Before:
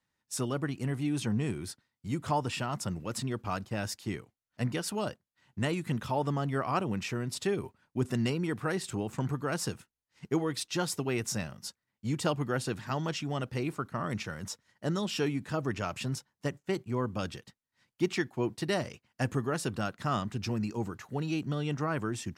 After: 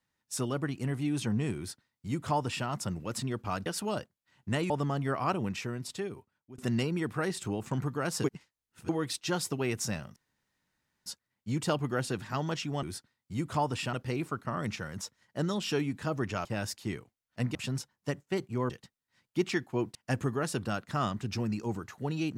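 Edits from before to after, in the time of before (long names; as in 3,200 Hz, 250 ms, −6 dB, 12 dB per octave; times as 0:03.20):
0:01.57–0:02.67: duplicate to 0:13.40
0:03.66–0:04.76: move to 0:15.92
0:05.80–0:06.17: remove
0:06.88–0:08.05: fade out, to −23 dB
0:09.71–0:10.36: reverse
0:11.63: splice in room tone 0.90 s
0:17.07–0:17.34: remove
0:18.59–0:19.06: remove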